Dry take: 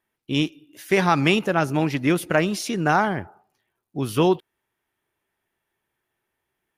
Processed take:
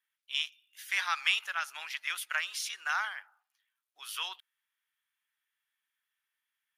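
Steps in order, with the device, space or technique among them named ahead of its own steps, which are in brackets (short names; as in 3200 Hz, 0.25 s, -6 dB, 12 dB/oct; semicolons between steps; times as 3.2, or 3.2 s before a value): headphones lying on a table (HPF 1300 Hz 24 dB/oct; bell 3300 Hz +4.5 dB 0.28 oct); gain -5.5 dB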